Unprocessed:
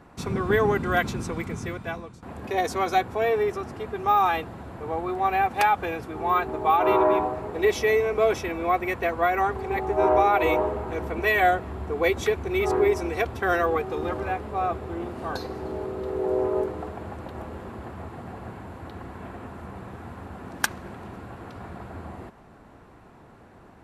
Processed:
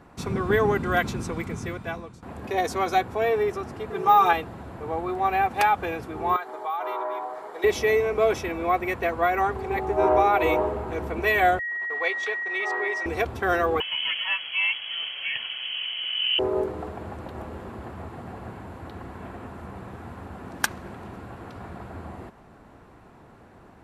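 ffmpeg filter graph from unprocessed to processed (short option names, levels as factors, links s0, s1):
-filter_complex "[0:a]asettb=1/sr,asplit=3[s0][s1][s2];[s0]atrim=end=3.904[s3];[s1]atrim=start=3.9:end=4.33,asetpts=PTS-STARTPTS,afade=t=in:d=0.004:c=qsin,afade=t=out:st=0.426:d=0.004:c=qsin,aecho=1:1:5.9:0.97,atrim=end_sample=18963,aeval=exprs='val(0)+0.0251*sin(2*PI*430*n/s)':c=same,highpass=f=130:p=1[s4];[s2]atrim=start=4.326[s5];[s3][s4]acrossfade=d=0.004:c1=hsin:c2=qsin[s6];[s6][s5]acrossfade=d=0.004:c1=qsin:c2=hsin,asettb=1/sr,asplit=3[s7][s8][s9];[s7]atrim=end=6.364[s10];[s8]atrim=start=6.36:end=7.64,asetpts=PTS-STARTPTS,afade=t=in:d=0.004:c=qsin,afade=t=out:st=1.276:d=0.004:c=qsin,highpass=650,bandreject=f=2600:w=5,acompressor=threshold=0.0282:ratio=2:attack=3.2:release=140:knee=1:detection=peak[s11];[s9]atrim=start=7.636[s12];[s10][s11]acrossfade=d=0.004:c1=hsin:c2=qsin[s13];[s13][s12]acrossfade=d=0.004:c1=qsin:c2=hsin,asettb=1/sr,asplit=3[s14][s15][s16];[s14]atrim=end=11.594[s17];[s15]atrim=start=11.59:end=13.06,asetpts=PTS-STARTPTS,afade=t=in:d=0.004:c=qsin,afade=t=out:st=1.466:d=0.004:c=qsin,agate=range=0.0251:threshold=0.0224:ratio=16:release=100:detection=peak,aeval=exprs='val(0)+0.0447*sin(2*PI*1900*n/s)':c=same,highpass=760,lowpass=5100[s18];[s16]atrim=start=13.056[s19];[s17][s18]acrossfade=d=0.004:c1=hsin:c2=qsin[s20];[s20][s19]acrossfade=d=0.004:c1=qsin:c2=hsin,asettb=1/sr,asplit=3[s21][s22][s23];[s21]atrim=end=13.804[s24];[s22]atrim=start=13.8:end=16.39,asetpts=PTS-STARTPTS,afade=t=in:d=0.004:c=qsin,afade=t=out:st=2.586:d=0.004:c=qsin,highpass=89,highshelf=f=2200:g=10.5,lowpass=f=2900:t=q:w=0.5098,lowpass=f=2900:t=q:w=0.6013,lowpass=f=2900:t=q:w=0.9,lowpass=f=2900:t=q:w=2.563,afreqshift=-3400[s25];[s23]atrim=start=16.386[s26];[s24][s25]acrossfade=d=0.004:c1=hsin:c2=qsin[s27];[s27][s26]acrossfade=d=0.004:c1=qsin:c2=hsin"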